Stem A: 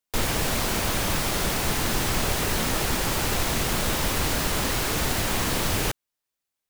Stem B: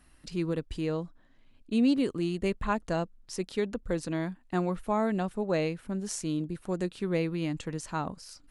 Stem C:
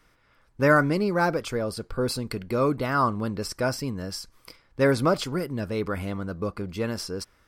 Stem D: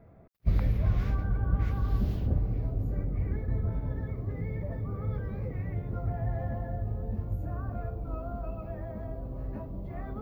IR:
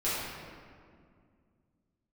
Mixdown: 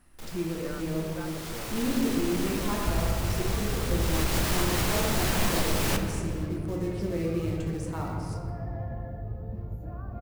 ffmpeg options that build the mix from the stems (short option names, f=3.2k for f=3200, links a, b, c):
-filter_complex "[0:a]volume=20.5dB,asoftclip=hard,volume=-20.5dB,adelay=50,volume=-1.5dB,afade=t=in:st=1.16:d=0.69:silence=0.354813,afade=t=in:st=4:d=0.47:silence=0.334965,asplit=3[a][b][c];[b]volume=-12dB[d];[c]volume=-18dB[e];[1:a]equalizer=f=3.8k:w=0.67:g=-6,acrusher=bits=4:mode=log:mix=0:aa=0.000001,volume=-1.5dB,asplit=2[f][g];[g]volume=-10.5dB[h];[2:a]volume=-15.5dB[i];[3:a]adelay=2400,volume=-4.5dB,asplit=2[j][k];[k]volume=-14dB[l];[f][i]amix=inputs=2:normalize=0,alimiter=level_in=7.5dB:limit=-24dB:level=0:latency=1:release=259,volume=-7.5dB,volume=0dB[m];[4:a]atrim=start_sample=2205[n];[d][h][l]amix=inputs=3:normalize=0[o];[o][n]afir=irnorm=-1:irlink=0[p];[e]aecho=0:1:228:1[q];[a][j][m][p][q]amix=inputs=5:normalize=0,alimiter=limit=-15dB:level=0:latency=1:release=339"